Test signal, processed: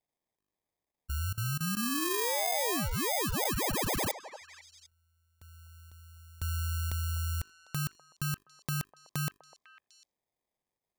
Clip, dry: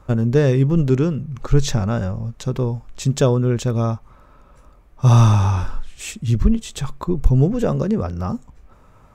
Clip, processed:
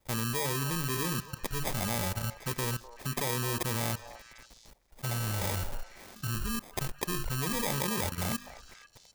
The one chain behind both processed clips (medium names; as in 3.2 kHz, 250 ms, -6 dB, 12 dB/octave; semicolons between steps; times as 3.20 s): hum notches 50/100/150/200/250/300/350/400 Hz; sample-and-hold 31×; pre-emphasis filter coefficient 0.8; level held to a coarse grid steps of 20 dB; peaking EQ 1 kHz +5 dB 2.6 oct; repeats whose band climbs or falls 250 ms, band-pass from 720 Hz, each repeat 1.4 oct, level -9.5 dB; trim +7.5 dB